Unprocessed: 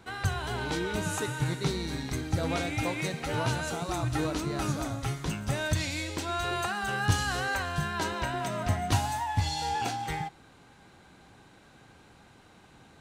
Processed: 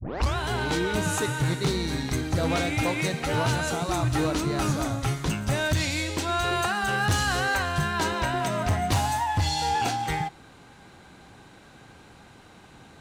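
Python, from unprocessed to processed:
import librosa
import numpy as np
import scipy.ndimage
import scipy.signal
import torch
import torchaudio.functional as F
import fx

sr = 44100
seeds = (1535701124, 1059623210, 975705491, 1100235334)

y = fx.tape_start_head(x, sr, length_s=0.36)
y = np.clip(10.0 ** (24.5 / 20.0) * y, -1.0, 1.0) / 10.0 ** (24.5 / 20.0)
y = y * librosa.db_to_amplitude(5.5)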